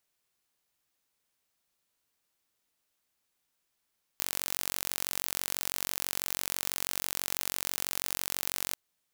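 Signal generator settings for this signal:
impulse train 46.1 per second, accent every 0, −5 dBFS 4.54 s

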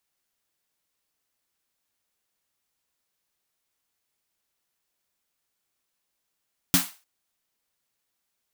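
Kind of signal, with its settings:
synth snare length 0.30 s, tones 180 Hz, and 270 Hz, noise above 690 Hz, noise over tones 2 dB, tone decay 0.18 s, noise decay 0.33 s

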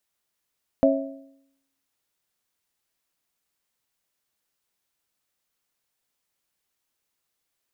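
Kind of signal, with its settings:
struck metal bell, lowest mode 273 Hz, modes 3, decay 0.79 s, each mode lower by 0 dB, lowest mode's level −16.5 dB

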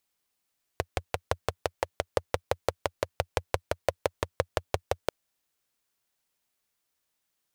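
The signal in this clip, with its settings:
pulse-train model of a single-cylinder engine, steady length 4.29 s, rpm 700, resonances 88/520 Hz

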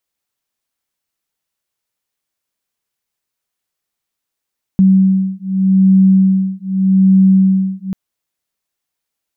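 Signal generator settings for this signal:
two tones that beat 190 Hz, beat 0.83 Hz, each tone −11 dBFS 3.14 s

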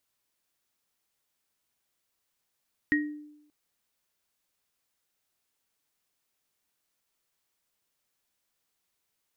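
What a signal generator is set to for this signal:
inharmonic partials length 0.58 s, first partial 298 Hz, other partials 1,880 Hz, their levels 2 dB, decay 0.84 s, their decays 0.28 s, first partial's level −22 dB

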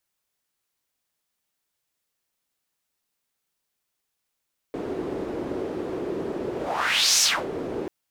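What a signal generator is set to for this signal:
pass-by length 3.14 s, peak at 0:02.47, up 0.71 s, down 0.27 s, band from 380 Hz, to 6,100 Hz, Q 2.9, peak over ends 11.5 dB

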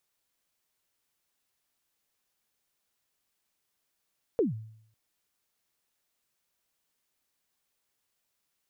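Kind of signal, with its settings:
synth kick length 0.55 s, from 510 Hz, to 110 Hz, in 145 ms, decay 0.67 s, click off, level −19.5 dB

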